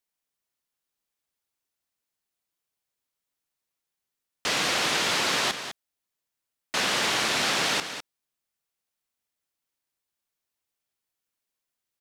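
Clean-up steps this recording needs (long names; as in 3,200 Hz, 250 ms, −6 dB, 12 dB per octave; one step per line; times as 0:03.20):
clipped peaks rebuilt −15 dBFS
echo removal 204 ms −10 dB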